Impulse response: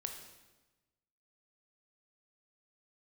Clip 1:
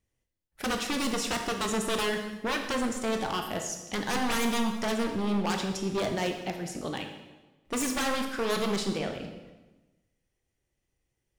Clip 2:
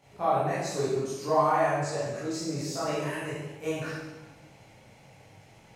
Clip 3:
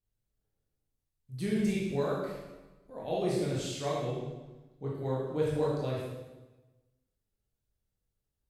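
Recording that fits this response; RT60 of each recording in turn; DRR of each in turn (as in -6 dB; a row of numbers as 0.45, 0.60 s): 1; 1.1, 1.1, 1.1 s; 4.0, -11.5, -6.0 dB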